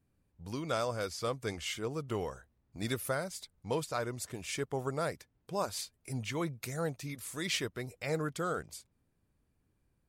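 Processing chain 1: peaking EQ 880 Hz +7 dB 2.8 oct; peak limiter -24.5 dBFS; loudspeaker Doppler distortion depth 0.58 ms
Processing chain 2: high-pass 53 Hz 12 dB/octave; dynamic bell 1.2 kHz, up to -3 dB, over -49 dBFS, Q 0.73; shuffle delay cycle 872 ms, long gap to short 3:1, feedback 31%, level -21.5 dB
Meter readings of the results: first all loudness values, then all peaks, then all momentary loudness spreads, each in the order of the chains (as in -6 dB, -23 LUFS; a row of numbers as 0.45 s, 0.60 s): -36.5 LUFS, -37.5 LUFS; -24.5 dBFS, -21.5 dBFS; 7 LU, 10 LU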